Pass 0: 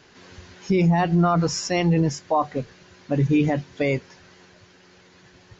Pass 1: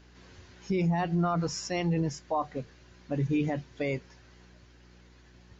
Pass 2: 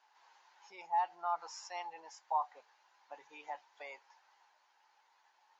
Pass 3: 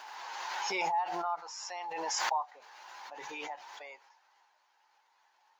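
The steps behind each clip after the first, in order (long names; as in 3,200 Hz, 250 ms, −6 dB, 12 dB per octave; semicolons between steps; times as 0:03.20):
mains hum 60 Hz, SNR 25 dB; level −8.5 dB
four-pole ladder high-pass 820 Hz, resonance 80%
background raised ahead of every attack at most 21 dB per second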